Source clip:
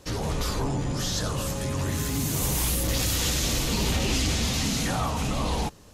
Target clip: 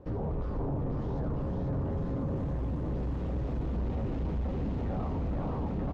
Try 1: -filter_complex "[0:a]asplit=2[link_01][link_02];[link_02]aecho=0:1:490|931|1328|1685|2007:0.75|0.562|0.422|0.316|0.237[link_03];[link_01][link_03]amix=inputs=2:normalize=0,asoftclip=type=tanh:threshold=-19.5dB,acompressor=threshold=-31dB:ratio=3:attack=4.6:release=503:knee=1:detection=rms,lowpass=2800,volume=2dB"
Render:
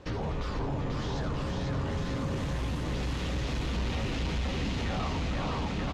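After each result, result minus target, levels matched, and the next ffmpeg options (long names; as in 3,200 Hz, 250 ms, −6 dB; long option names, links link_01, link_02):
2,000 Hz band +14.0 dB; soft clipping: distortion −6 dB
-filter_complex "[0:a]asplit=2[link_01][link_02];[link_02]aecho=0:1:490|931|1328|1685|2007:0.75|0.562|0.422|0.316|0.237[link_03];[link_01][link_03]amix=inputs=2:normalize=0,asoftclip=type=tanh:threshold=-19.5dB,acompressor=threshold=-31dB:ratio=3:attack=4.6:release=503:knee=1:detection=rms,lowpass=730,volume=2dB"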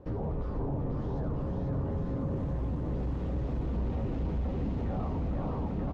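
soft clipping: distortion −6 dB
-filter_complex "[0:a]asplit=2[link_01][link_02];[link_02]aecho=0:1:490|931|1328|1685|2007:0.75|0.562|0.422|0.316|0.237[link_03];[link_01][link_03]amix=inputs=2:normalize=0,asoftclip=type=tanh:threshold=-26dB,acompressor=threshold=-31dB:ratio=3:attack=4.6:release=503:knee=1:detection=rms,lowpass=730,volume=2dB"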